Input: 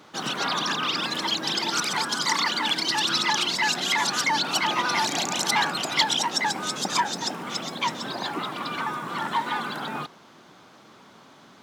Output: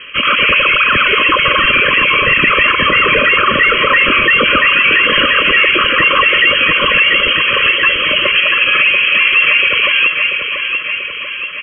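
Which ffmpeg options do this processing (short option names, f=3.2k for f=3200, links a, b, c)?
-filter_complex "[0:a]highpass=f=80:w=0.5412,highpass=f=80:w=1.3066,lowshelf=f=260:g=-11,bandreject=f=50:t=h:w=6,bandreject=f=100:t=h:w=6,bandreject=f=150:t=h:w=6,bandreject=f=200:t=h:w=6,asetrate=32097,aresample=44100,atempo=1.37395,asoftclip=type=tanh:threshold=-15.5dB,asplit=2[a][b];[b]aecho=0:1:687|1374|2061|2748|3435|4122|4809:0.398|0.227|0.129|0.0737|0.042|0.024|0.0137[c];[a][c]amix=inputs=2:normalize=0,lowpass=f=2.9k:t=q:w=0.5098,lowpass=f=2.9k:t=q:w=0.6013,lowpass=f=2.9k:t=q:w=0.9,lowpass=f=2.9k:t=q:w=2.563,afreqshift=-3400,asuperstop=centerf=800:order=20:qfactor=1.9,alimiter=level_in=22.5dB:limit=-1dB:release=50:level=0:latency=1,volume=-1dB"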